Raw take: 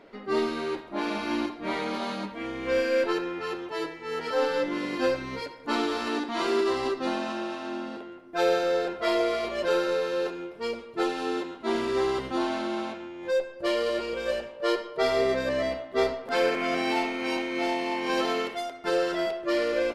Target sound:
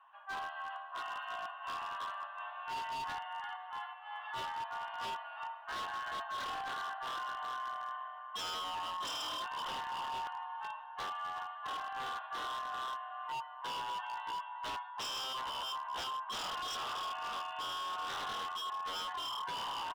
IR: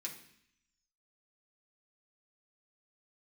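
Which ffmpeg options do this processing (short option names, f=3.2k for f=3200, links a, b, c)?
-filter_complex "[0:a]asplit=3[a][b][c];[a]bandpass=f=730:t=q:w=8,volume=0dB[d];[b]bandpass=f=1.09k:t=q:w=8,volume=-6dB[e];[c]bandpass=f=2.44k:t=q:w=8,volume=-9dB[f];[d][e][f]amix=inputs=3:normalize=0,highpass=f=160:t=q:w=0.5412,highpass=f=160:t=q:w=1.307,lowpass=f=3.1k:t=q:w=0.5176,lowpass=f=3.1k:t=q:w=0.7071,lowpass=f=3.1k:t=q:w=1.932,afreqshift=390,asplit=2[g][h];[h]adelay=379,lowpass=f=2.2k:p=1,volume=-6.5dB,asplit=2[i][j];[j]adelay=379,lowpass=f=2.2k:p=1,volume=0.54,asplit=2[k][l];[l]adelay=379,lowpass=f=2.2k:p=1,volume=0.54,asplit=2[m][n];[n]adelay=379,lowpass=f=2.2k:p=1,volume=0.54,asplit=2[o][p];[p]adelay=379,lowpass=f=2.2k:p=1,volume=0.54,asplit=2[q][r];[r]adelay=379,lowpass=f=2.2k:p=1,volume=0.54,asplit=2[s][t];[t]adelay=379,lowpass=f=2.2k:p=1,volume=0.54[u];[g][i][k][m][o][q][s][u]amix=inputs=8:normalize=0,asplit=2[v][w];[1:a]atrim=start_sample=2205[x];[w][x]afir=irnorm=-1:irlink=0,volume=-9.5dB[y];[v][y]amix=inputs=2:normalize=0,aeval=exprs='0.0188*(abs(mod(val(0)/0.0188+3,4)-2)-1)':c=same"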